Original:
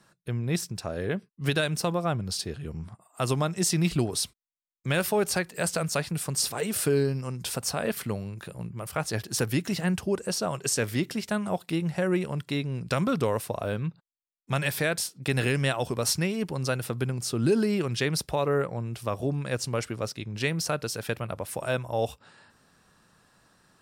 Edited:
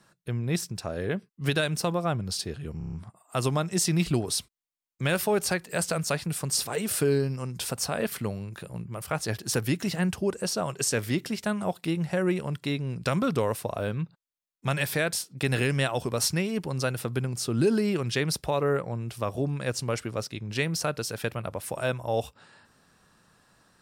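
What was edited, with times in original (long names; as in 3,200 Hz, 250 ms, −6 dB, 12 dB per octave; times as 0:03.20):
0:02.78: stutter 0.03 s, 6 plays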